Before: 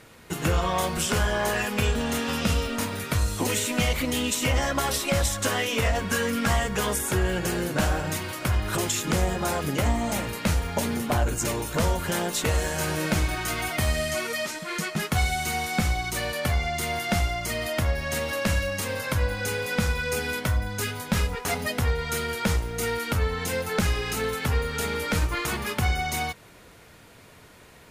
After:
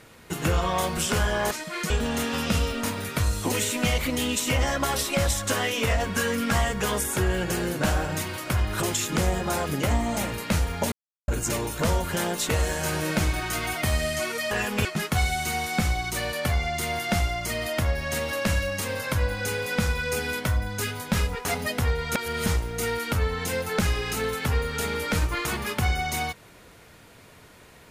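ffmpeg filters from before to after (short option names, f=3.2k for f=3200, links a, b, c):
-filter_complex "[0:a]asplit=9[a][b][c][d][e][f][g][h][i];[a]atrim=end=1.512[j];[b]atrim=start=14.458:end=14.852[k];[c]atrim=start=1.848:end=10.87,asetpts=PTS-STARTPTS,afade=t=out:st=9.018:d=0.004:c=hsin[l];[d]atrim=start=10.87:end=11.23,asetpts=PTS-STARTPTS,volume=0[m];[e]atrim=start=11.23:end=14.462,asetpts=PTS-STARTPTS,afade=t=in:d=0.004:c=hsin[n];[f]atrim=start=1.508:end=1.852[o];[g]atrim=start=14.848:end=22.152[p];[h]atrim=start=22.148:end=22.462,asetpts=PTS-STARTPTS,areverse[q];[i]atrim=start=22.458[r];[j][k]acrossfade=d=0.004:c1=hsin:c2=hsin[s];[l][m][n]concat=n=3:v=0:a=1[t];[s][t]acrossfade=d=0.004:c1=hsin:c2=hsin[u];[u][o]acrossfade=d=0.004:c1=hsin:c2=hsin[v];[v][p]acrossfade=d=0.004:c1=hsin:c2=hsin[w];[w][q]acrossfade=d=0.004:c1=hsin:c2=hsin[x];[x][r]acrossfade=d=0.004:c1=hsin:c2=hsin"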